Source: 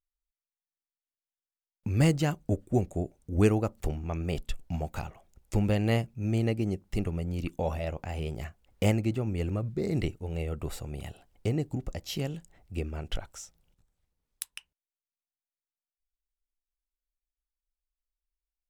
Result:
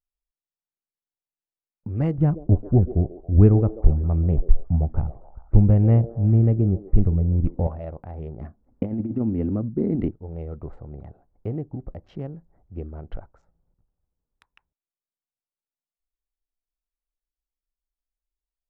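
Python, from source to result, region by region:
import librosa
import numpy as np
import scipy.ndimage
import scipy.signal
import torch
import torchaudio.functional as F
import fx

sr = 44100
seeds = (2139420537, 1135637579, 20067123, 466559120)

y = fx.chain(x, sr, fx.riaa(side='playback'),
    fx.echo_stepped(ms=136, hz=430.0, octaves=0.7, feedback_pct=70, wet_db=-9), at=(2.18, 7.67))
y = fx.chain(y, sr, fx.lowpass(hz=4600.0, slope=12),
    fx.peak_eq(hz=250.0, db=15.0, octaves=0.63),
    fx.over_compress(threshold_db=-22.0, ratio=-0.5), at=(8.41, 10.11))
y = fx.wiener(y, sr, points=15)
y = scipy.signal.sosfilt(scipy.signal.butter(2, 1200.0, 'lowpass', fs=sr, output='sos'), y)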